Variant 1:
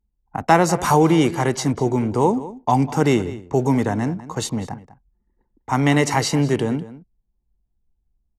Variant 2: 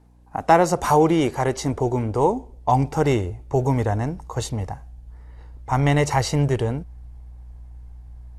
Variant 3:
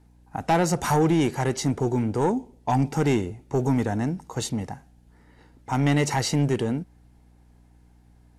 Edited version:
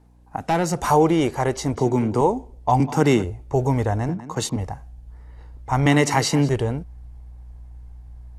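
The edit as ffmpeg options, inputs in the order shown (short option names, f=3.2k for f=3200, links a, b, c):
-filter_complex "[0:a]asplit=4[a][b][c][d];[1:a]asplit=6[e][f][g][h][i][j];[e]atrim=end=0.372[k];[2:a]atrim=start=0.368:end=0.822[l];[f]atrim=start=0.818:end=1.752[m];[a]atrim=start=1.748:end=2.212[n];[g]atrim=start=2.208:end=2.802[o];[b]atrim=start=2.798:end=3.242[p];[h]atrim=start=3.238:end=4.092[q];[c]atrim=start=4.088:end=4.562[r];[i]atrim=start=4.558:end=5.862[s];[d]atrim=start=5.858:end=6.492[t];[j]atrim=start=6.488[u];[k][l]acrossfade=d=0.004:c1=hsin:c2=hsin[v];[v][m]acrossfade=d=0.004:c1=hsin:c2=hsin[w];[w][n]acrossfade=d=0.004:c1=hsin:c2=hsin[x];[x][o]acrossfade=d=0.004:c1=hsin:c2=hsin[y];[y][p]acrossfade=d=0.004:c1=hsin:c2=hsin[z];[z][q]acrossfade=d=0.004:c1=hsin:c2=hsin[aa];[aa][r]acrossfade=d=0.004:c1=hsin:c2=hsin[ab];[ab][s]acrossfade=d=0.004:c1=hsin:c2=hsin[ac];[ac][t]acrossfade=d=0.004:c1=hsin:c2=hsin[ad];[ad][u]acrossfade=d=0.004:c1=hsin:c2=hsin"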